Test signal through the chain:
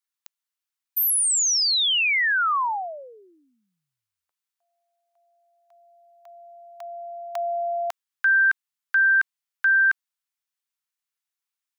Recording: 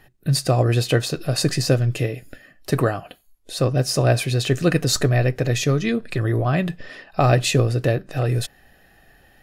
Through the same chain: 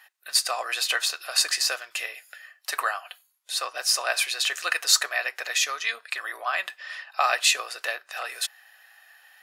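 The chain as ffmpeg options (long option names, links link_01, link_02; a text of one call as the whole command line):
ffmpeg -i in.wav -af "highpass=frequency=940:width=0.5412,highpass=frequency=940:width=1.3066,volume=3dB" out.wav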